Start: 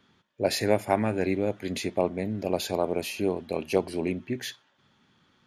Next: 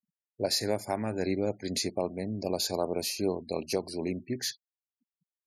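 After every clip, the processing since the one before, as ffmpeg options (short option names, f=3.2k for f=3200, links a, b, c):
-af "highshelf=f=3.8k:t=q:w=3:g=6,afftfilt=real='re*gte(hypot(re,im),0.00631)':imag='im*gte(hypot(re,im),0.00631)':win_size=1024:overlap=0.75,alimiter=limit=-14dB:level=0:latency=1:release=410,volume=-2.5dB"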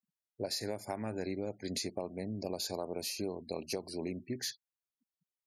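-af "acompressor=threshold=-29dB:ratio=6,volume=-3.5dB"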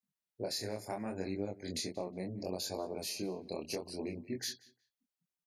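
-filter_complex "[0:a]flanger=delay=20:depth=7.9:speed=0.72,asplit=2[a][b];[b]adelay=182,lowpass=f=3.8k:p=1,volume=-20dB,asplit=2[c][d];[d]adelay=182,lowpass=f=3.8k:p=1,volume=0.22[e];[a][c][e]amix=inputs=3:normalize=0,volume=2dB"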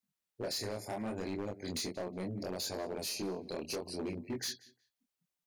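-af "asoftclip=type=hard:threshold=-35.5dB,volume=2.5dB"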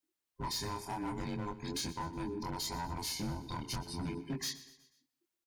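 -af "afftfilt=real='real(if(between(b,1,1008),(2*floor((b-1)/24)+1)*24-b,b),0)':imag='imag(if(between(b,1,1008),(2*floor((b-1)/24)+1)*24-b,b),0)*if(between(b,1,1008),-1,1)':win_size=2048:overlap=0.75,aecho=1:1:122|244|366|488:0.141|0.0692|0.0339|0.0166"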